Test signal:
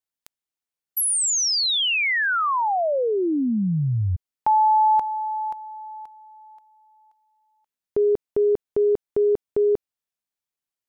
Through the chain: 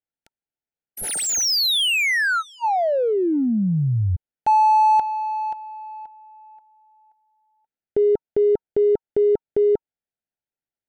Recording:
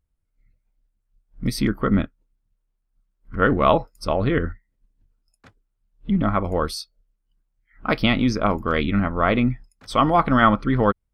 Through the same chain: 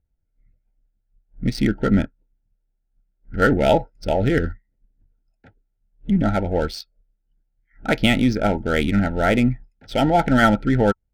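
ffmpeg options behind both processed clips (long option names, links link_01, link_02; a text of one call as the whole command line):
ffmpeg -i in.wav -af "adynamicsmooth=sensitivity=4.5:basefreq=1900,asuperstop=centerf=1100:order=20:qfactor=2.8,volume=2dB" out.wav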